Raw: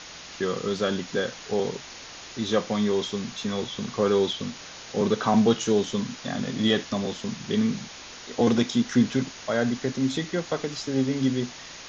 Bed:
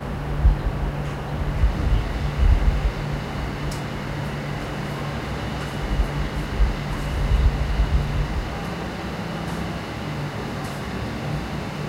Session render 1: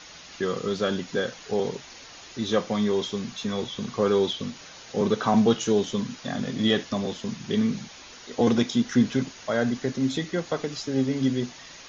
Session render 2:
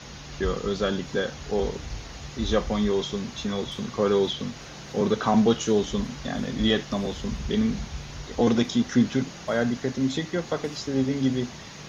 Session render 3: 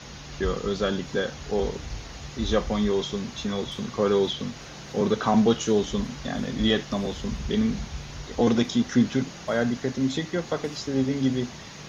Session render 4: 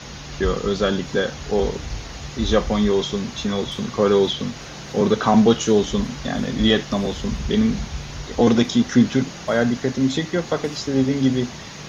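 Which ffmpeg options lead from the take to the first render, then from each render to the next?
-af "afftdn=nr=6:nf=-43"
-filter_complex "[1:a]volume=0.168[s0];[0:a][s0]amix=inputs=2:normalize=0"
-af anull
-af "volume=1.88"

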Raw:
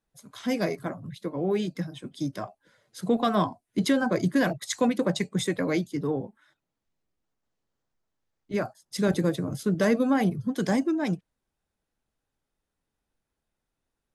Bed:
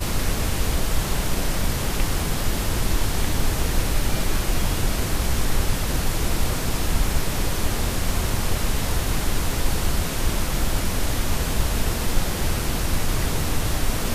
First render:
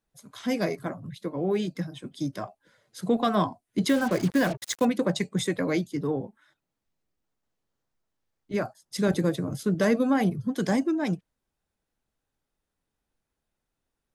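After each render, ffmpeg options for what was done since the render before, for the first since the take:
-filter_complex "[0:a]asettb=1/sr,asplit=3[s0][s1][s2];[s0]atrim=end=3.894[s3];[s1]atrim=start=3.89:end=4.85,asetpts=PTS-STARTPTS,afade=t=in:d=0.004:c=qsin,afade=t=out:st=0.956:d=0.004:c=qsin,acrusher=bits=5:mix=0:aa=0.5[s4];[s2]atrim=start=4.846[s5];[s3][s4]acrossfade=d=0.004:c1=hsin:c2=qsin[s6];[s6][s5]acrossfade=d=0.004:c1=qsin:c2=hsin"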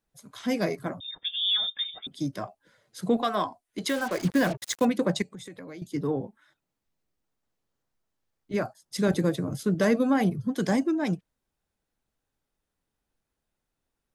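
-filter_complex "[0:a]asettb=1/sr,asplit=3[s0][s1][s2];[s0]atrim=end=1.004[s3];[s1]atrim=start=1:end=2.07,asetpts=PTS-STARTPTS,afade=t=in:d=0.004:c=qsin,afade=t=out:st=1.066:d=0.004:c=qsin,lowpass=f=3200:t=q:w=0.5098,lowpass=f=3200:t=q:w=0.6013,lowpass=f=3200:t=q:w=0.9,lowpass=f=3200:t=q:w=2.563,afreqshift=-3800[s4];[s2]atrim=start=2.066[s5];[s3][s4]acrossfade=d=0.004:c1=hsin:c2=qsin[s6];[s6][s5]acrossfade=d=0.004:c1=qsin:c2=hsin,asettb=1/sr,asplit=3[s7][s8][s9];[s7]atrim=end=3.224[s10];[s8]atrim=start=3.22:end=4.25,asetpts=PTS-STARTPTS,afade=t=in:d=0.004:c=qsin,afade=t=out:st=1.026:d=0.004:c=qsin,equalizer=f=140:w=0.65:g=-14[s11];[s9]atrim=start=4.246[s12];[s10][s11]acrossfade=d=0.004:c1=hsin:c2=qsin[s13];[s13][s12]acrossfade=d=0.004:c1=qsin:c2=hsin,asettb=1/sr,asplit=3[s14][s15][s16];[s14]atrim=end=5.224[s17];[s15]atrim=start=5.22:end=5.82,asetpts=PTS-STARTPTS,afade=t=in:d=0.004:c=qsin,afade=t=out:st=0.596:d=0.004:c=qsin,acompressor=threshold=0.01:ratio=6:attack=3.2:release=140:knee=1:detection=peak[s18];[s16]atrim=start=5.816[s19];[s17][s18]acrossfade=d=0.004:c1=hsin:c2=qsin[s20];[s20][s19]acrossfade=d=0.004:c1=qsin:c2=hsin"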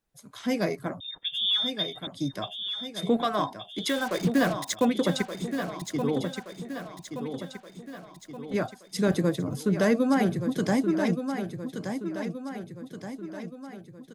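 -af "aecho=1:1:1174|2348|3522|4696|5870|7044:0.398|0.207|0.108|0.056|0.0291|0.0151"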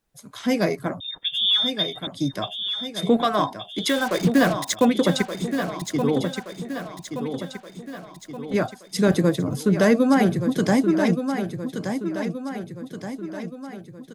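-af "volume=1.88"

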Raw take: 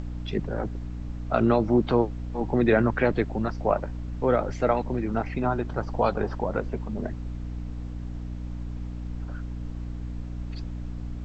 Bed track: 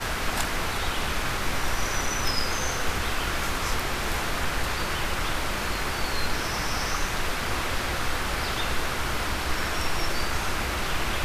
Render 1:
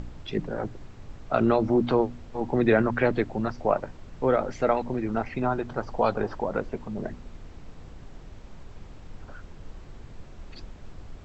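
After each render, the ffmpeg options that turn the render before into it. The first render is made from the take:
-af "bandreject=f=60:t=h:w=4,bandreject=f=120:t=h:w=4,bandreject=f=180:t=h:w=4,bandreject=f=240:t=h:w=4,bandreject=f=300:t=h:w=4"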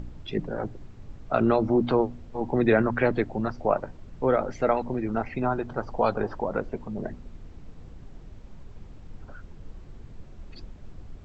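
-af "afftdn=nr=6:nf=-46"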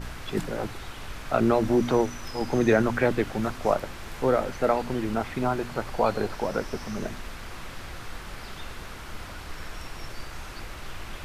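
-filter_complex "[1:a]volume=0.224[s0];[0:a][s0]amix=inputs=2:normalize=0"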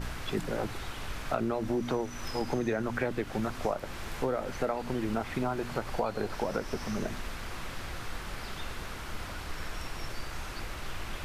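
-af "acompressor=threshold=0.0447:ratio=6"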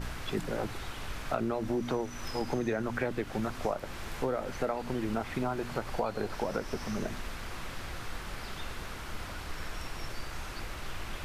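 -af "volume=0.891"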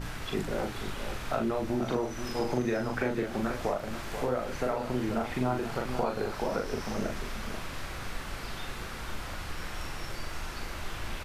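-filter_complex "[0:a]asplit=2[s0][s1];[s1]adelay=40,volume=0.668[s2];[s0][s2]amix=inputs=2:normalize=0,asplit=2[s3][s4];[s4]aecho=0:1:485:0.355[s5];[s3][s5]amix=inputs=2:normalize=0"

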